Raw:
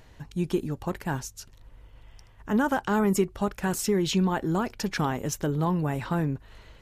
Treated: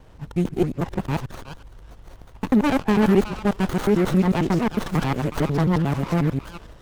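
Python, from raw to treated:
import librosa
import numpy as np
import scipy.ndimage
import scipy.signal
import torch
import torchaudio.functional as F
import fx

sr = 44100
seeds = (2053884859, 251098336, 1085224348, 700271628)

y = fx.local_reverse(x, sr, ms=90.0)
y = fx.echo_stepped(y, sr, ms=368, hz=1600.0, octaves=1.4, feedback_pct=70, wet_db=-3.5)
y = fx.running_max(y, sr, window=17)
y = y * librosa.db_to_amplitude(6.0)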